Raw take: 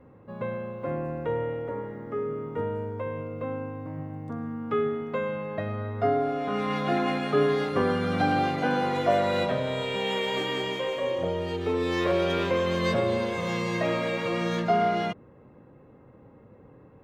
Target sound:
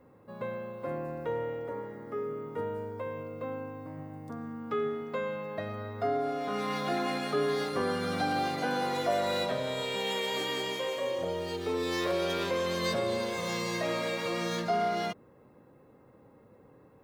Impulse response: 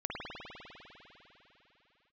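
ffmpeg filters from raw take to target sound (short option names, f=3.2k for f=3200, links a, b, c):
-filter_complex "[0:a]lowshelf=f=190:g=-7.5,asplit=2[a][b];[b]alimiter=limit=-20.5dB:level=0:latency=1,volume=-1dB[c];[a][c]amix=inputs=2:normalize=0,aexciter=amount=3.3:drive=2.9:freq=4k,volume=-8.5dB"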